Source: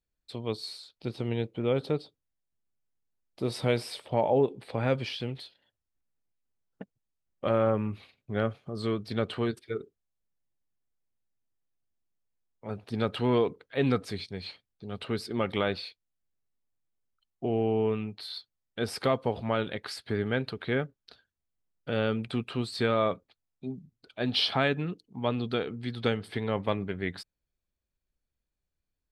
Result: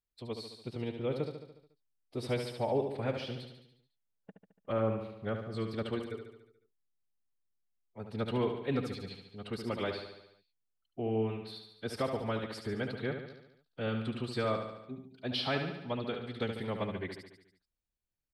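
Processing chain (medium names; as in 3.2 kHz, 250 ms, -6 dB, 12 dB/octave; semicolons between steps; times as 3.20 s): time stretch by phase-locked vocoder 0.63×; feedback delay 72 ms, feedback 58%, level -7 dB; trim -6 dB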